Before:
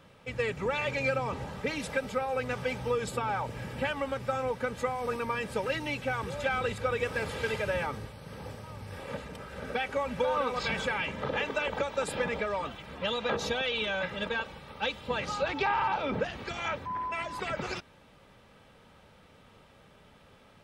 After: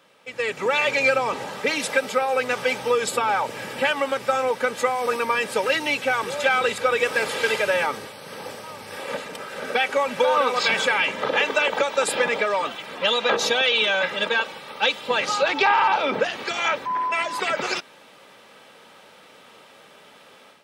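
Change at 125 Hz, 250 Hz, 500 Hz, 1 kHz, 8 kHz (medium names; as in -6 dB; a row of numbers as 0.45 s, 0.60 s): -5.5 dB, +3.5 dB, +8.5 dB, +10.0 dB, +13.5 dB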